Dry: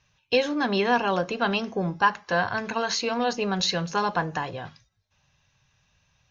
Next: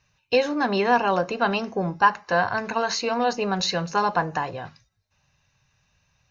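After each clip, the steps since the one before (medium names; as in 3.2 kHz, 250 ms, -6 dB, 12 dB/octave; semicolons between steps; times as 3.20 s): dynamic bell 810 Hz, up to +4 dB, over -36 dBFS, Q 0.86; band-stop 3.3 kHz, Q 7.2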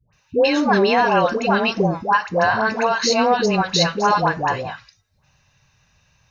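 peak limiter -13 dBFS, peak gain reduction 7.5 dB; phase dispersion highs, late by 130 ms, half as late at 760 Hz; trim +7 dB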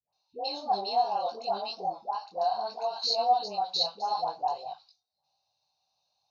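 two resonant band-passes 1.8 kHz, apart 2.5 oct; detune thickener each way 22 cents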